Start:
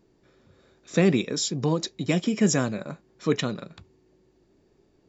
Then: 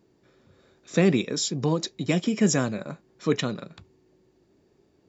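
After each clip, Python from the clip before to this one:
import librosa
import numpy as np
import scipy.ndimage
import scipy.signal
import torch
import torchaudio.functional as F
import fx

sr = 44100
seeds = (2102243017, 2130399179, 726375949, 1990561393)

y = scipy.signal.sosfilt(scipy.signal.butter(2, 60.0, 'highpass', fs=sr, output='sos'), x)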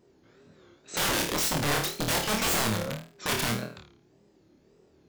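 y = (np.mod(10.0 ** (23.0 / 20.0) * x + 1.0, 2.0) - 1.0) / 10.0 ** (23.0 / 20.0)
y = fx.room_flutter(y, sr, wall_m=4.5, rt60_s=0.43)
y = fx.wow_flutter(y, sr, seeds[0], rate_hz=2.1, depth_cents=150.0)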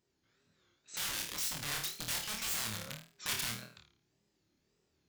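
y = fx.tone_stack(x, sr, knobs='5-5-5')
y = fx.rider(y, sr, range_db=4, speed_s=0.5)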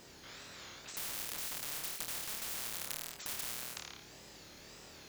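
y = fx.spectral_comp(x, sr, ratio=10.0)
y = y * librosa.db_to_amplitude(5.0)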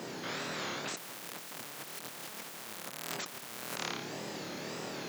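y = fx.over_compress(x, sr, threshold_db=-48.0, ratio=-1.0)
y = scipy.signal.sosfilt(scipy.signal.butter(4, 140.0, 'highpass', fs=sr, output='sos'), y)
y = fx.high_shelf(y, sr, hz=2200.0, db=-10.0)
y = y * librosa.db_to_amplitude(12.5)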